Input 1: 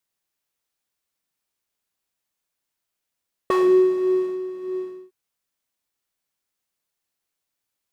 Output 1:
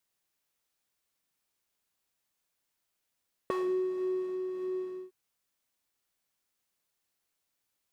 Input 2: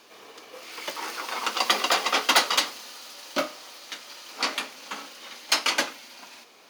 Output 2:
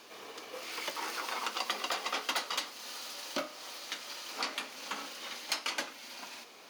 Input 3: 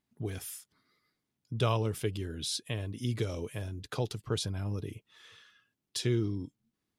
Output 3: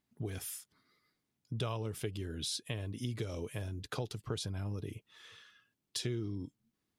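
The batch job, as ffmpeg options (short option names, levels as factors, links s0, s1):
-af "acompressor=threshold=0.0178:ratio=3"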